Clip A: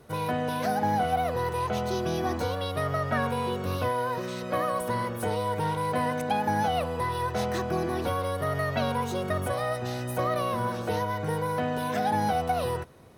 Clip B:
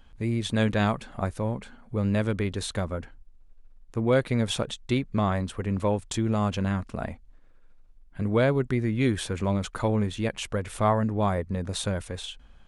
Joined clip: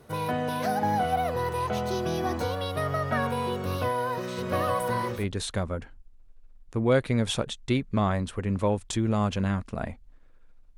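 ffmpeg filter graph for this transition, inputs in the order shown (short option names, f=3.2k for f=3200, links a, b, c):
-filter_complex "[0:a]asplit=3[a][b][c];[a]afade=t=out:st=4.37:d=0.02[d];[b]aecho=1:1:858:0.631,afade=t=in:st=4.37:d=0.02,afade=t=out:st=5.26:d=0.02[e];[c]afade=t=in:st=5.26:d=0.02[f];[d][e][f]amix=inputs=3:normalize=0,apad=whole_dur=10.77,atrim=end=10.77,atrim=end=5.26,asetpts=PTS-STARTPTS[g];[1:a]atrim=start=2.31:end=7.98,asetpts=PTS-STARTPTS[h];[g][h]acrossfade=d=0.16:c1=tri:c2=tri"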